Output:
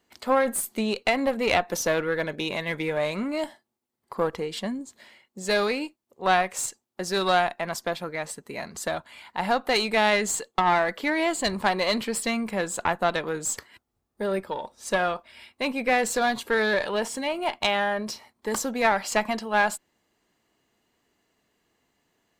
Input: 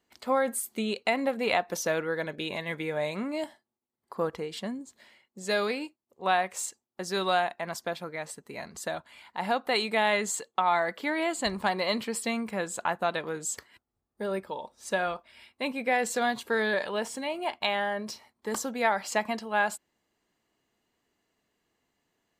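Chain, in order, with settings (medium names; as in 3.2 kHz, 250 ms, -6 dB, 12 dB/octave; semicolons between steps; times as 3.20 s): single-diode clipper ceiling -24.5 dBFS; trim +5.5 dB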